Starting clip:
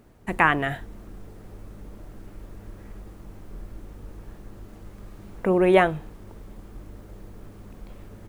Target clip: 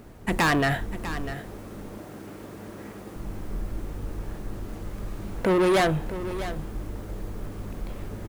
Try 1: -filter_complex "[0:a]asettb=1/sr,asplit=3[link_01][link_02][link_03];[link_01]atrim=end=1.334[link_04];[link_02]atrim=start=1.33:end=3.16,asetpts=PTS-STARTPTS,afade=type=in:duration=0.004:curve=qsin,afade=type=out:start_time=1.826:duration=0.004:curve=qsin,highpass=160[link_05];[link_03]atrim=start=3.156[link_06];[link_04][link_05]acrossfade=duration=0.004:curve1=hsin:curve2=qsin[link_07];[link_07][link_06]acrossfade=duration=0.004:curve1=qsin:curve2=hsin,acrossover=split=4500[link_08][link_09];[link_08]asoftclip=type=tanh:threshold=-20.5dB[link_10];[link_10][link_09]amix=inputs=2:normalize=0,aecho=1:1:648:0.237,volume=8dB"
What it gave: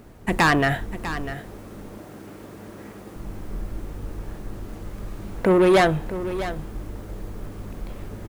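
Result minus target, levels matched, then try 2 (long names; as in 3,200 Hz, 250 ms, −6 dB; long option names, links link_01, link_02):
soft clipping: distortion −4 dB
-filter_complex "[0:a]asettb=1/sr,asplit=3[link_01][link_02][link_03];[link_01]atrim=end=1.334[link_04];[link_02]atrim=start=1.33:end=3.16,asetpts=PTS-STARTPTS,afade=type=in:duration=0.004:curve=qsin,afade=type=out:start_time=1.826:duration=0.004:curve=qsin,highpass=160[link_05];[link_03]atrim=start=3.156[link_06];[link_04][link_05]acrossfade=duration=0.004:curve1=hsin:curve2=qsin[link_07];[link_07][link_06]acrossfade=duration=0.004:curve1=qsin:curve2=hsin,acrossover=split=4500[link_08][link_09];[link_08]asoftclip=type=tanh:threshold=-26.5dB[link_10];[link_10][link_09]amix=inputs=2:normalize=0,aecho=1:1:648:0.237,volume=8dB"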